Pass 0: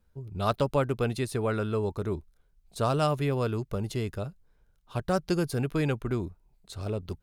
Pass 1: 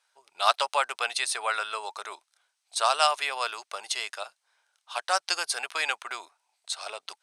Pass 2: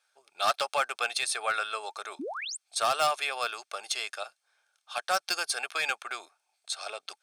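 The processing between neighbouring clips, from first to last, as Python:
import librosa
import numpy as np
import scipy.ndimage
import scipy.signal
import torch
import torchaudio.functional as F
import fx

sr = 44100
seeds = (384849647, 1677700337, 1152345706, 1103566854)

y1 = scipy.signal.sosfilt(scipy.signal.cheby1(3, 1.0, [740.0, 8400.0], 'bandpass', fs=sr, output='sos'), x)
y1 = fx.tilt_eq(y1, sr, slope=3.0)
y1 = fx.notch(y1, sr, hz=7200.0, q=6.9)
y1 = y1 * 10.0 ** (7.5 / 20.0)
y2 = np.clip(10.0 ** (18.0 / 20.0) * y1, -1.0, 1.0) / 10.0 ** (18.0 / 20.0)
y2 = fx.spec_paint(y2, sr, seeds[0], shape='rise', start_s=2.19, length_s=0.38, low_hz=230.0, high_hz=9100.0, level_db=-35.0)
y2 = fx.notch_comb(y2, sr, f0_hz=970.0)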